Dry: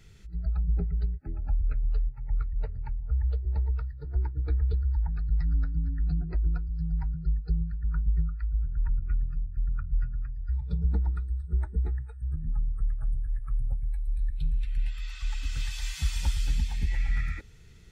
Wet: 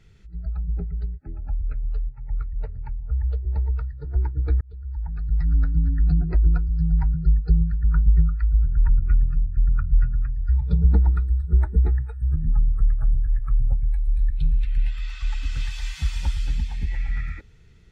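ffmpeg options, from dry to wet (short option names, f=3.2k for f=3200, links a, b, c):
-filter_complex "[0:a]asplit=2[a][b];[a]atrim=end=4.61,asetpts=PTS-STARTPTS,afade=t=out:st=4.606:d=0.004:c=hsin[c];[b]atrim=start=4.61,asetpts=PTS-STARTPTS,afade=t=in:d=1.11[d];[c][d]concat=n=2:v=0:a=1,lowpass=f=3.2k:p=1,dynaudnorm=f=980:g=9:m=9.5dB"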